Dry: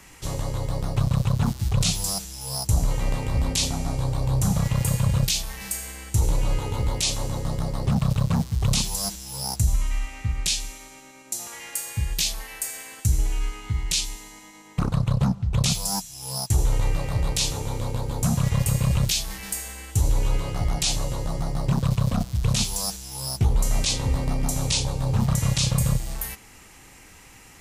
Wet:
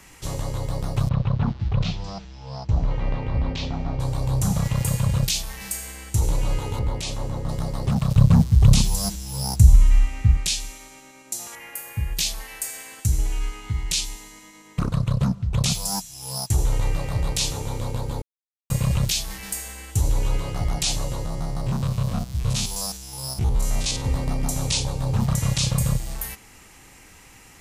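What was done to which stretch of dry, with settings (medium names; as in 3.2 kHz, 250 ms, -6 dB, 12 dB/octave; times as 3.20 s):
1.09–4.00 s: Gaussian low-pass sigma 2.4 samples
6.79–7.49 s: treble shelf 3.2 kHz -11.5 dB
8.16–10.37 s: bass shelf 260 Hz +10.5 dB
11.55–12.17 s: high-order bell 5.5 kHz -11 dB
14.25–15.49 s: peaking EQ 810 Hz -9 dB 0.22 oct
18.22–18.70 s: mute
21.25–24.05 s: spectrogram pixelated in time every 50 ms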